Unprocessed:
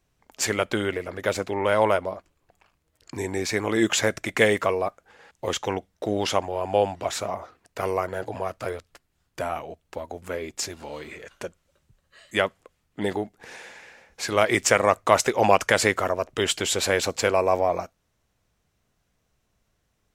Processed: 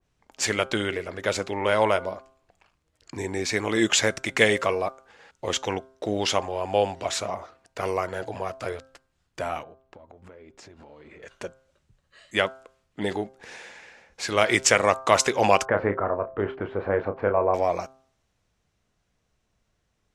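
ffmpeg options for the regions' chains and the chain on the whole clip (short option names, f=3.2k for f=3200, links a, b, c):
-filter_complex "[0:a]asettb=1/sr,asplit=3[a][b][c];[a]atrim=end=9.634[d];[b]atrim=start=9.63:end=11.23,asetpts=PTS-STARTPTS,afade=t=in:d=0.004:c=qsin,afade=t=out:st=1.596:d=0.004:c=qsin,lowpass=f=1.3k:p=1,acompressor=threshold=-42dB:ratio=12:attack=3.2:release=140:knee=1:detection=peak[e];[c]atrim=start=11.226[f];[d][e]acrossfade=d=0.004:c1=hsin:c2=qsin[g];[g][f]acrossfade=d=0.004:c1=qsin:c2=hsin,asettb=1/sr,asplit=3[h][i][j];[h]atrim=end=15.654[k];[i]atrim=start=15.65:end=17.54,asetpts=PTS-STARTPTS,afade=t=in:d=0.004:c=qsin,afade=t=out:st=1.886:d=0.004:c=qsin,lowpass=f=1.4k:w=0.5412,lowpass=f=1.4k:w=1.3066,asplit=2[l][m];[m]adelay=30,volume=-8.5dB[n];[l][n]amix=inputs=2:normalize=0,atrim=end_sample=83349[o];[j]atrim=start=17.536[p];[k][o]acrossfade=d=0.004:c1=hsin:c2=qsin[q];[q][p]acrossfade=d=0.004:c1=qsin:c2=hsin,lowpass=8.5k,bandreject=f=132:t=h:w=4,bandreject=f=264:t=h:w=4,bandreject=f=396:t=h:w=4,bandreject=f=528:t=h:w=4,bandreject=f=660:t=h:w=4,bandreject=f=792:t=h:w=4,bandreject=f=924:t=h:w=4,bandreject=f=1.056k:t=h:w=4,bandreject=f=1.188k:t=h:w=4,bandreject=f=1.32k:t=h:w=4,bandreject=f=1.452k:t=h:w=4,bandreject=f=1.584k:t=h:w=4,adynamicequalizer=threshold=0.02:dfrequency=2000:dqfactor=0.7:tfrequency=2000:tqfactor=0.7:attack=5:release=100:ratio=0.375:range=2.5:mode=boostabove:tftype=highshelf,volume=-1dB"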